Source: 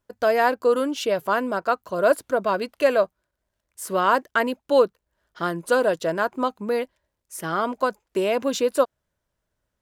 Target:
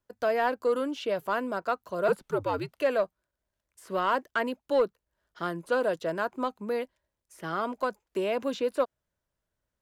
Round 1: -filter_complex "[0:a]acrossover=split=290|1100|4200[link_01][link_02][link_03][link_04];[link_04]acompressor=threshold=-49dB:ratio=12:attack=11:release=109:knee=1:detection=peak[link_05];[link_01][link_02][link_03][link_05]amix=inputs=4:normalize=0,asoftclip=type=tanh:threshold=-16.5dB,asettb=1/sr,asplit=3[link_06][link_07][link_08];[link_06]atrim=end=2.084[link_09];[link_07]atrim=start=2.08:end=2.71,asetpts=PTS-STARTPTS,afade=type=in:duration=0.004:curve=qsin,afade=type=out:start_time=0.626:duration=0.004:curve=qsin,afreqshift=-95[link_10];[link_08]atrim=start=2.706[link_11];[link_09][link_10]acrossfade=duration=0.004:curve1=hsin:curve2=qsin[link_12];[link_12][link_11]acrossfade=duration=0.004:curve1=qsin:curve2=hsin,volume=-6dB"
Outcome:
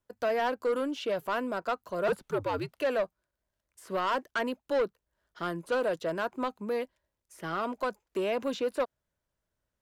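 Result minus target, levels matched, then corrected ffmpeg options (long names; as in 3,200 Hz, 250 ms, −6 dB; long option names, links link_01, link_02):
soft clipping: distortion +10 dB
-filter_complex "[0:a]acrossover=split=290|1100|4200[link_01][link_02][link_03][link_04];[link_04]acompressor=threshold=-49dB:ratio=12:attack=11:release=109:knee=1:detection=peak[link_05];[link_01][link_02][link_03][link_05]amix=inputs=4:normalize=0,asoftclip=type=tanh:threshold=-8.5dB,asettb=1/sr,asplit=3[link_06][link_07][link_08];[link_06]atrim=end=2.084[link_09];[link_07]atrim=start=2.08:end=2.71,asetpts=PTS-STARTPTS,afade=type=in:duration=0.004:curve=qsin,afade=type=out:start_time=0.626:duration=0.004:curve=qsin,afreqshift=-95[link_10];[link_08]atrim=start=2.706[link_11];[link_09][link_10]acrossfade=duration=0.004:curve1=hsin:curve2=qsin[link_12];[link_12][link_11]acrossfade=duration=0.004:curve1=qsin:curve2=hsin,volume=-6dB"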